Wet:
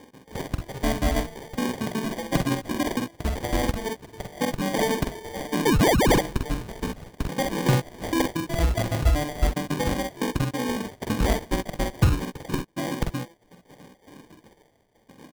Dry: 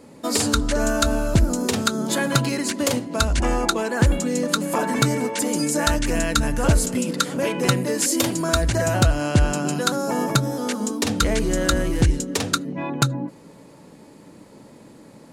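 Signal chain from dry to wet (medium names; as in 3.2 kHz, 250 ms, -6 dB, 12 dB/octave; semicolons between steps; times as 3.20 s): random holes in the spectrogram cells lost 72%; low-pass 9.3 kHz 12 dB/octave; treble shelf 5.6 kHz -4.5 dB; on a send: early reflections 46 ms -5.5 dB, 62 ms -10 dB; on the sum: painted sound rise, 5.65–6.21 s, 830–6300 Hz -19 dBFS; sample-and-hold 33×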